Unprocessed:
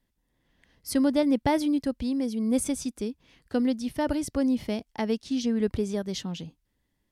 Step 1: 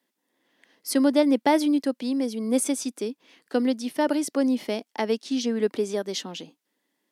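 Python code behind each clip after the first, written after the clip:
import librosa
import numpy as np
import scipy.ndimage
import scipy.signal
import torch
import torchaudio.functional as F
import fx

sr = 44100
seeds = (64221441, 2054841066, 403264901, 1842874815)

y = scipy.signal.sosfilt(scipy.signal.butter(4, 260.0, 'highpass', fs=sr, output='sos'), x)
y = y * 10.0 ** (4.5 / 20.0)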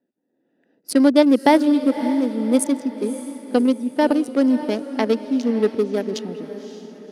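y = fx.wiener(x, sr, points=41)
y = fx.echo_diffused(y, sr, ms=563, feedback_pct=45, wet_db=-12.0)
y = y * 10.0 ** (6.5 / 20.0)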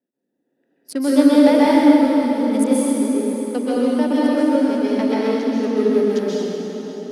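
y = fx.rev_plate(x, sr, seeds[0], rt60_s=3.0, hf_ratio=0.75, predelay_ms=115, drr_db=-8.5)
y = y * 10.0 ** (-7.5 / 20.0)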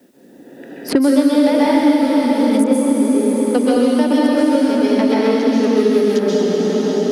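y = fx.band_squash(x, sr, depth_pct=100)
y = y * 10.0 ** (2.0 / 20.0)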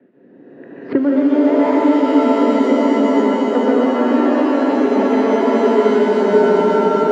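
y = fx.cabinet(x, sr, low_hz=100.0, low_slope=12, high_hz=2200.0, hz=(120.0, 400.0, 810.0), db=(9, 5, -5))
y = fx.rev_shimmer(y, sr, seeds[1], rt60_s=3.6, semitones=7, shimmer_db=-2, drr_db=5.5)
y = y * 10.0 ** (-3.0 / 20.0)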